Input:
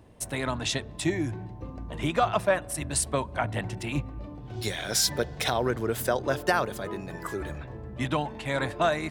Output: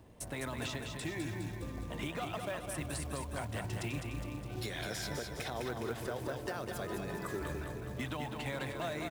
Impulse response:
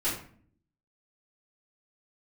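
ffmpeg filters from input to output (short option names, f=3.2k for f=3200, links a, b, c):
-filter_complex "[0:a]asettb=1/sr,asplit=3[a][b][c];[a]atrim=end=5.644[d];[b]atrim=start=5.64:end=6.48,asetpts=PTS-STARTPTS,afade=t=in:d=0.004:c=qsin,afade=t=out:st=0.836:d=0.004:c=qsin,aemphasis=mode=reproduction:type=75fm[e];[c]atrim=start=6.476[f];[d][e]acrossfade=d=0.004:c1=hsin:c2=qsin[g];[g][f]acrossfade=d=0.004:c1=qsin:c2=hsin,acrossover=split=630|2400[h][i][j];[h]acompressor=threshold=-32dB:ratio=4[k];[i]acompressor=threshold=-36dB:ratio=4[l];[j]acompressor=threshold=-40dB:ratio=4[m];[k][l][m]amix=inputs=3:normalize=0,alimiter=level_in=1.5dB:limit=-24dB:level=0:latency=1:release=153,volume=-1.5dB,aecho=1:1:206|412|618|824|1030|1236|1442|1648:0.531|0.308|0.179|0.104|0.0601|0.0348|0.0202|0.0117,acrusher=bits=5:mode=log:mix=0:aa=0.000001,volume=-3.5dB"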